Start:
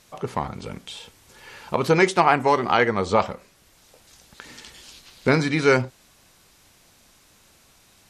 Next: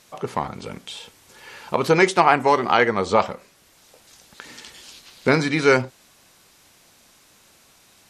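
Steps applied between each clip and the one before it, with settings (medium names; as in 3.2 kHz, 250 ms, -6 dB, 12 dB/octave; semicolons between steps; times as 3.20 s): bass shelf 100 Hz -10.5 dB; trim +2 dB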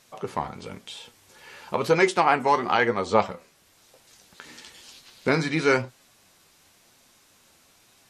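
flange 1 Hz, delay 7.1 ms, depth 6.1 ms, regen +57%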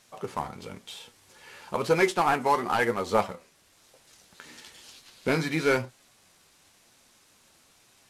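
CVSD coder 64 kbps; trim -2.5 dB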